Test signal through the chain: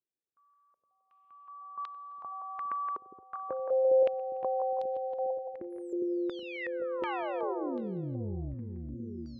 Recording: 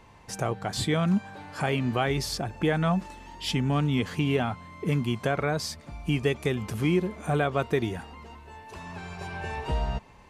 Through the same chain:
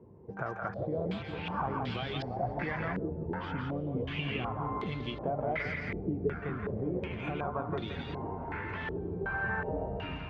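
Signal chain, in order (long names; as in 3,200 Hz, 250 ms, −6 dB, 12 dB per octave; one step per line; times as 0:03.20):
spectral magnitudes quantised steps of 15 dB
high-pass filter 68 Hz 24 dB per octave
downward compressor 6 to 1, threshold −36 dBFS
delay with pitch and tempo change per echo 360 ms, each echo −7 semitones, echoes 3, each echo −6 dB
high-frequency loss of the air 65 metres
on a send: echo with a time of its own for lows and highs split 450 Hz, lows 407 ms, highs 170 ms, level −4 dB
on the sum: low-pass on a step sequencer 2.7 Hz 400–3,800 Hz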